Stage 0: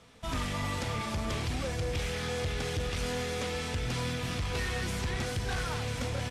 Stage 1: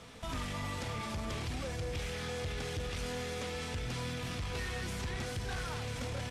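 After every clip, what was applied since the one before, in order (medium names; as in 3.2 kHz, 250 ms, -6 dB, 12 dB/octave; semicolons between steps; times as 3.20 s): peak limiter -37.5 dBFS, peak gain reduction 10.5 dB; trim +5.5 dB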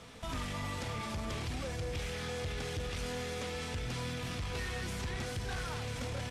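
no audible change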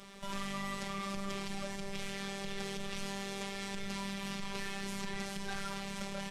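robot voice 197 Hz; trim +2 dB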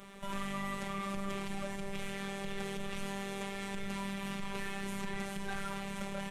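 peaking EQ 5 kHz -10.5 dB 0.85 oct; trim +1.5 dB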